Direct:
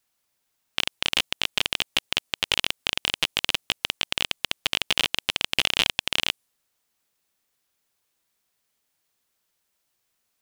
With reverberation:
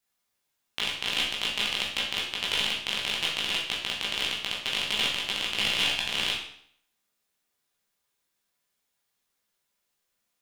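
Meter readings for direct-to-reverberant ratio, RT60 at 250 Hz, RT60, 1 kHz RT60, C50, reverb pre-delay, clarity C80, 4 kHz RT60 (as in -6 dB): -5.5 dB, 0.65 s, 0.65 s, 0.65 s, 3.5 dB, 14 ms, 7.0 dB, 0.60 s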